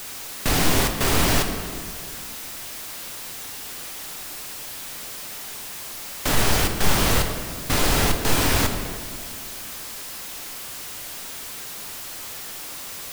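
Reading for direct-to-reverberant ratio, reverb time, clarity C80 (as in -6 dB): 4.5 dB, 2.0 s, 8.5 dB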